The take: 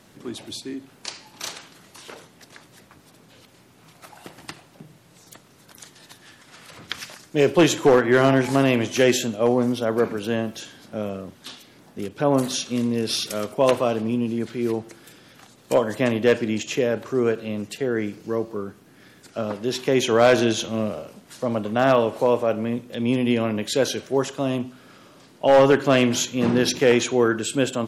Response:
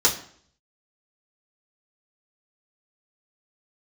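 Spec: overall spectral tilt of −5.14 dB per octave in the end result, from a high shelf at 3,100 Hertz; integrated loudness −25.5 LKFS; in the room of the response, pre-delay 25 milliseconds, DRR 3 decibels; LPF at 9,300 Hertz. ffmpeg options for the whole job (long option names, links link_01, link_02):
-filter_complex "[0:a]lowpass=9300,highshelf=frequency=3100:gain=-7.5,asplit=2[link_01][link_02];[1:a]atrim=start_sample=2205,adelay=25[link_03];[link_02][link_03]afir=irnorm=-1:irlink=0,volume=-18dB[link_04];[link_01][link_04]amix=inputs=2:normalize=0,volume=-6dB"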